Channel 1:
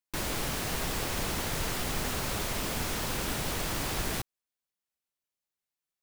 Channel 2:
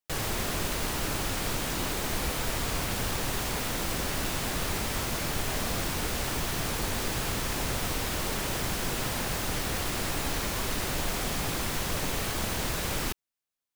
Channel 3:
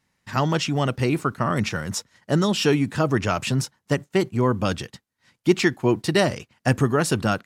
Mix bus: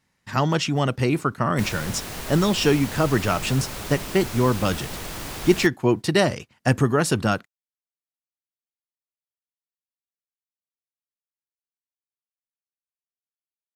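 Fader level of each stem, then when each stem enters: -1.0 dB, mute, +0.5 dB; 1.45 s, mute, 0.00 s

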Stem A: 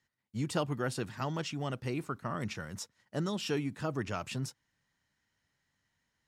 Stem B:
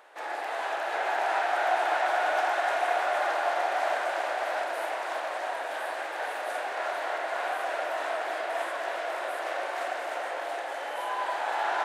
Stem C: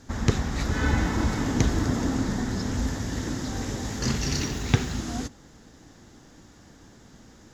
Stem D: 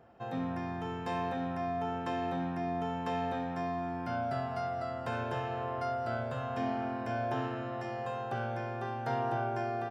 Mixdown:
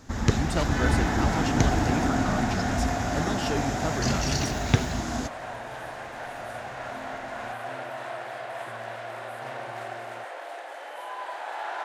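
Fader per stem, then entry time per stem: +2.5 dB, -5.0 dB, 0.0 dB, -9.5 dB; 0.00 s, 0.00 s, 0.00 s, 0.35 s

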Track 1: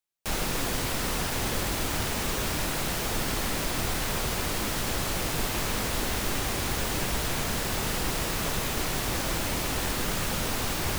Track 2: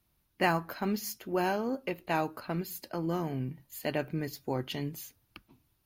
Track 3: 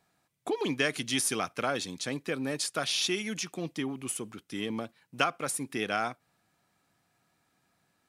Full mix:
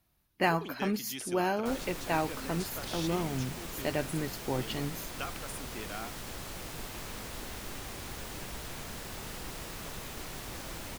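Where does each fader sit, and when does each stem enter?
-12.5 dB, 0.0 dB, -12.0 dB; 1.40 s, 0.00 s, 0.00 s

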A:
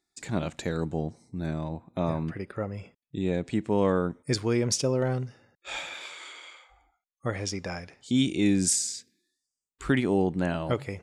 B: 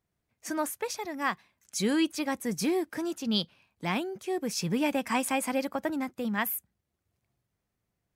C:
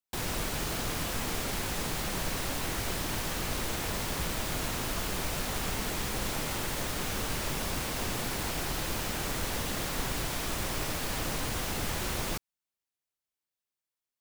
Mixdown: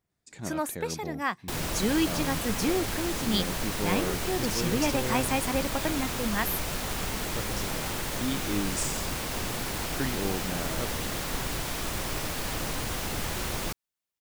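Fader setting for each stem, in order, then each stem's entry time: -8.0 dB, 0.0 dB, +1.0 dB; 0.10 s, 0.00 s, 1.35 s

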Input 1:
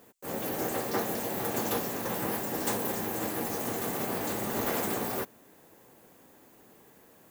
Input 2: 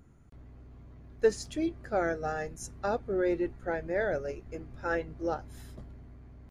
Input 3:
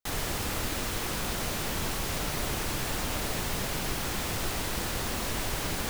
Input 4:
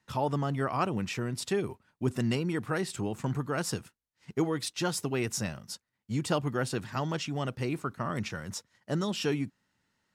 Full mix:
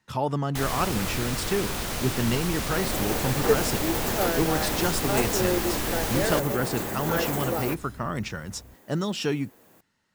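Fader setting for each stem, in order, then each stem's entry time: +1.0 dB, +1.5 dB, +1.5 dB, +3.0 dB; 2.50 s, 2.25 s, 0.50 s, 0.00 s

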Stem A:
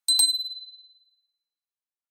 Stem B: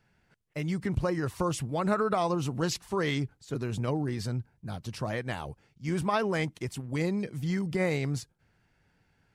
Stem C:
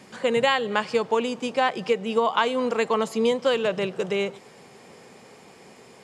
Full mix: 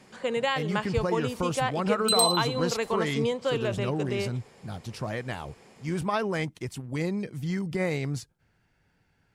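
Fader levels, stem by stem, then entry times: -4.0 dB, 0.0 dB, -6.0 dB; 2.00 s, 0.00 s, 0.00 s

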